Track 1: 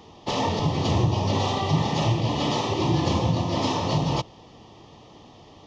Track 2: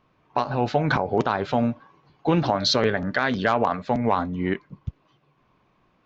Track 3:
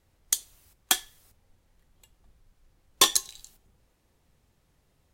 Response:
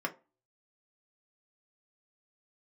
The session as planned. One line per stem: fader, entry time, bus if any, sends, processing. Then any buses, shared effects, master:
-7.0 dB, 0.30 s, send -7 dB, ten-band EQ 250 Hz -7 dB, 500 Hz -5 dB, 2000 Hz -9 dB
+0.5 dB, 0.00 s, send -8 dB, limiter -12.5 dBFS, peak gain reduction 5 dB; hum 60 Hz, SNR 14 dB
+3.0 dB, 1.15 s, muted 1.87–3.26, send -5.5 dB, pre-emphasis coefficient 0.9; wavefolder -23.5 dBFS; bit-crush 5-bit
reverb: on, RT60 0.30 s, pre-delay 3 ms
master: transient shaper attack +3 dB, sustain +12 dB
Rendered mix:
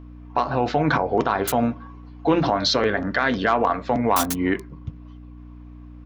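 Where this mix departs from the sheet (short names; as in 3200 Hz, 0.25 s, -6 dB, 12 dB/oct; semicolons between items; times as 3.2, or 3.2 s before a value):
stem 1: muted; stem 3: send off; master: missing transient shaper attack +3 dB, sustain +12 dB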